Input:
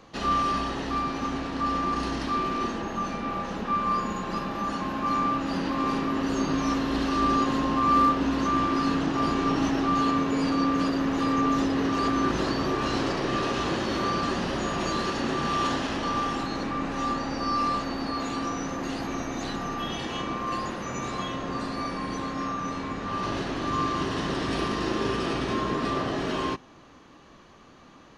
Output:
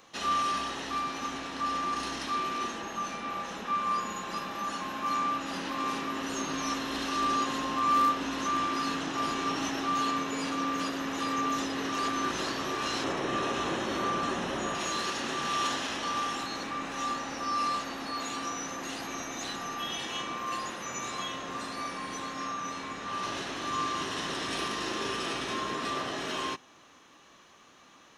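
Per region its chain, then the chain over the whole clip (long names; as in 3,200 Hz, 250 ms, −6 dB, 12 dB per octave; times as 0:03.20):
0:13.04–0:14.75: tilt shelving filter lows +4.5 dB, about 1,500 Hz + notch filter 4,700 Hz, Q 6.2
whole clip: spectral tilt +3 dB per octave; notch filter 4,600 Hz, Q 8.6; level −4 dB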